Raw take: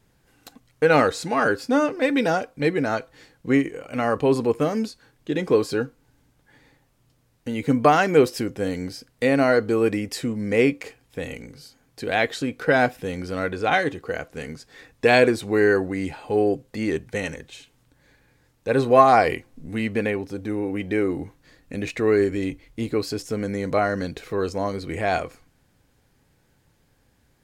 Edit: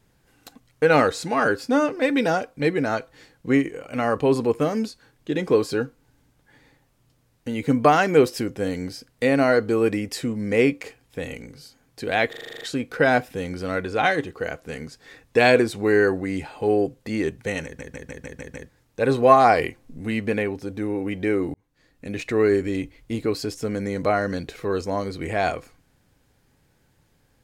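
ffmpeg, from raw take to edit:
-filter_complex "[0:a]asplit=17[a][b][c][d][e][f][g][h][i][j][k][l][m][n][o][p][q];[a]atrim=end=12.332[r];[b]atrim=start=12.288:end=12.332[s];[c]atrim=start=12.288:end=12.332[t];[d]atrim=start=12.288:end=12.332[u];[e]atrim=start=12.288:end=12.332[v];[f]atrim=start=12.288:end=12.332[w];[g]atrim=start=12.288:end=12.332[x];[h]atrim=start=12.288:end=12.332[y];[i]atrim=start=12.288:end=17.472[z];[j]atrim=start=17.318:end=17.472[aa];[k]atrim=start=17.318:end=17.472[ab];[l]atrim=start=17.318:end=17.472[ac];[m]atrim=start=17.318:end=17.472[ad];[n]atrim=start=17.318:end=17.472[ae];[o]atrim=start=17.318:end=17.472[af];[p]atrim=start=18.368:end=21.22,asetpts=PTS-STARTPTS,afade=t=out:st=2.848:d=0.004:c=hsin[ag];[q]atrim=start=21.22,asetpts=PTS-STARTPTS,afade=t=in:d=0.74[ah];[r][s]acrossfade=d=0.004:c1=hsin:c2=hsin[ai];[ai][t]acrossfade=d=0.004:c1=hsin:c2=hsin[aj];[aj][u]acrossfade=d=0.004:c1=hsin:c2=hsin[ak];[ak][v]acrossfade=d=0.004:c1=hsin:c2=hsin[al];[al][w]acrossfade=d=0.004:c1=hsin:c2=hsin[am];[am][x]acrossfade=d=0.004:c1=hsin:c2=hsin[an];[an][y]acrossfade=d=0.004:c1=hsin:c2=hsin[ao];[ao][z]acrossfade=d=0.004:c1=hsin:c2=hsin[ap];[ap][aa]acrossfade=d=0.004:c1=hsin:c2=hsin[aq];[aq][ab]acrossfade=d=0.004:c1=hsin:c2=hsin[ar];[ar][ac]acrossfade=d=0.004:c1=hsin:c2=hsin[as];[as][ad]acrossfade=d=0.004:c1=hsin:c2=hsin[at];[at][ae]acrossfade=d=0.004:c1=hsin:c2=hsin[au];[au][af]acrossfade=d=0.004:c1=hsin:c2=hsin[av];[ag][ah]concat=n=2:v=0:a=1[aw];[av][aw]acrossfade=d=0.004:c1=hsin:c2=hsin"

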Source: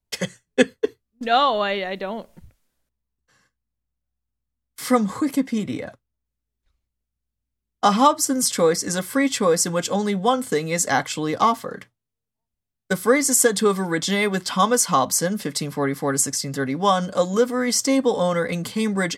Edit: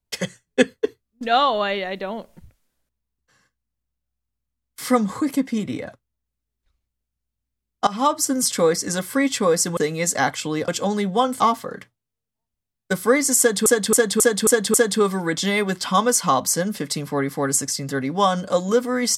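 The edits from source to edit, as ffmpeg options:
-filter_complex "[0:a]asplit=10[a][b][c][d][e][f][g][h][i][j];[a]atrim=end=7.87,asetpts=PTS-STARTPTS,afade=t=out:st=7.866:d=0.004:c=hsin:silence=0.112202[k];[b]atrim=start=7.87:end=9.772,asetpts=PTS-STARTPTS,afade=t=in:d=0.31:silence=0.112202[l];[c]atrim=start=10.488:end=11.402[m];[d]atrim=start=9.768:end=10.492[n];[e]atrim=start=11.398:end=13.662[o];[f]atrim=start=13.388:end=13.662[p];[g]atrim=start=13.388:end=13.662[q];[h]atrim=start=13.388:end=13.662[r];[i]atrim=start=13.388:end=13.662[s];[j]atrim=start=13.388[t];[k][l]concat=n=2:v=0:a=1[u];[u][m]acrossfade=d=0.004:c1=hsin:c2=hsin[v];[v][n]acrossfade=d=0.004:c1=hsin:c2=hsin[w];[w][o]acrossfade=d=0.004:c1=hsin:c2=hsin[x];[x][p]acrossfade=d=0.004:c1=hsin:c2=hsin[y];[y][q]acrossfade=d=0.004:c1=hsin:c2=hsin[z];[z][r]acrossfade=d=0.004:c1=hsin:c2=hsin[aa];[aa][s]acrossfade=d=0.004:c1=hsin:c2=hsin[ab];[ab][t]acrossfade=d=0.004:c1=hsin:c2=hsin"

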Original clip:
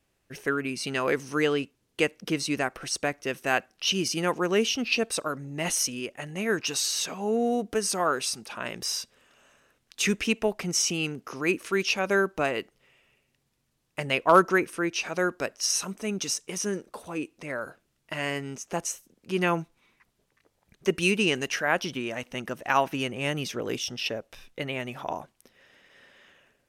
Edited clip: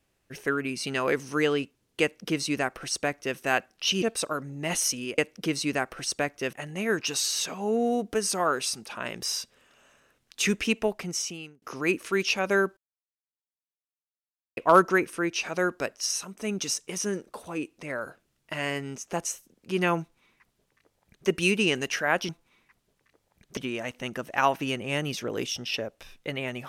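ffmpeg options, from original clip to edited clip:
-filter_complex "[0:a]asplit=10[a][b][c][d][e][f][g][h][i][j];[a]atrim=end=4.022[k];[b]atrim=start=4.968:end=6.132[l];[c]atrim=start=2.018:end=3.372[m];[d]atrim=start=6.128:end=11.22,asetpts=PTS-STARTPTS,afade=t=out:st=4.282:d=0.81[n];[e]atrim=start=11.22:end=12.37,asetpts=PTS-STARTPTS,afade=t=in:d=0.004:c=hsin,afade=t=out:st=1.146:d=0.004:c=hsin[o];[f]atrim=start=12.37:end=14.17,asetpts=PTS-STARTPTS,volume=0[p];[g]atrim=start=14.17:end=15.97,asetpts=PTS-STARTPTS,afade=t=in:d=0.004:c=hsin,afade=t=out:st=1.31:d=0.49:silence=0.375837[q];[h]atrim=start=15.97:end=21.892,asetpts=PTS-STARTPTS,afade=t=in:d=0.004:c=hsin:silence=0.375837[r];[i]atrim=start=19.598:end=20.882[s];[j]atrim=start=21.888[t];[k][l]acrossfade=d=0.004:c1=hsin:c2=hsin[u];[u][m]acrossfade=d=0.004:c1=hsin:c2=hsin[v];[n][o][p][q][r]concat=n=5:v=0:a=1[w];[v][w]acrossfade=d=0.004:c1=hsin:c2=hsin[x];[x][s]acrossfade=d=0.004:c1=hsin:c2=hsin[y];[y][t]acrossfade=d=0.004:c1=hsin:c2=hsin"

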